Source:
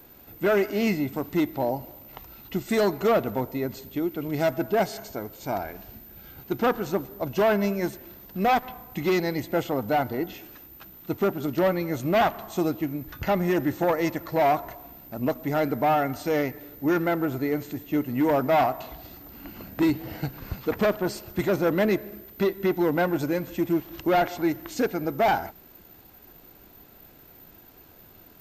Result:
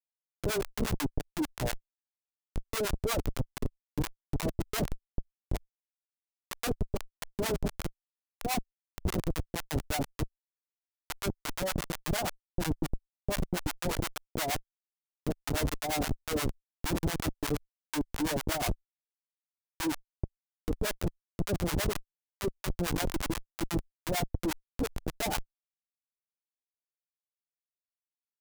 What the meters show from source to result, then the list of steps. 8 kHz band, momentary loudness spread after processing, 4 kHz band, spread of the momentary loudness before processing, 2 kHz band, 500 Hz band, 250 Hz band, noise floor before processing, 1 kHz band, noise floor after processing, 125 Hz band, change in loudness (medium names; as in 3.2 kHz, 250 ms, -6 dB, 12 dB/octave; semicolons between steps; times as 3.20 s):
+6.5 dB, 8 LU, +0.5 dB, 17 LU, -7.5 dB, -12.5 dB, -9.5 dB, -52 dBFS, -12.0 dB, under -85 dBFS, -2.5 dB, -8.5 dB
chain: chunks repeated in reverse 115 ms, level -11 dB; bass shelf 71 Hz -4 dB; hum notches 50/100/150/200 Hz; comb 6.8 ms, depth 59%; speakerphone echo 380 ms, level -25 dB; Schmitt trigger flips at -19.5 dBFS; treble shelf 4.4 kHz +6.5 dB; compressor with a negative ratio -25 dBFS, ratio -0.5; harmonic tremolo 8.5 Hz, depth 100%, crossover 710 Hz